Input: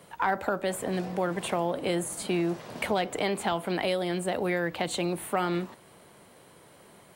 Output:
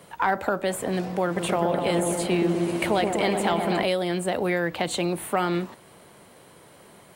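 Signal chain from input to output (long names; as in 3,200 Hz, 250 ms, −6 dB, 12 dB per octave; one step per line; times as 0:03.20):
0:01.24–0:03.83: echo whose low-pass opens from repeat to repeat 124 ms, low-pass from 750 Hz, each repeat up 1 octave, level −3 dB
level +3.5 dB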